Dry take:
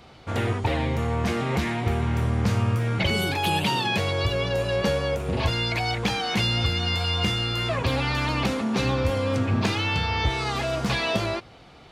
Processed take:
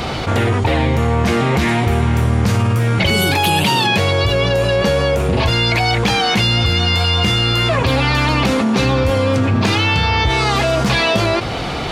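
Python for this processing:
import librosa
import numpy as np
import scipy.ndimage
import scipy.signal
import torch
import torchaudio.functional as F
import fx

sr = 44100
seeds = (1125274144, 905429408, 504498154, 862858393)

y = fx.high_shelf(x, sr, hz=7400.0, db=6.0, at=(1.68, 3.87))
y = fx.env_flatten(y, sr, amount_pct=70)
y = F.gain(torch.from_numpy(y), 5.5).numpy()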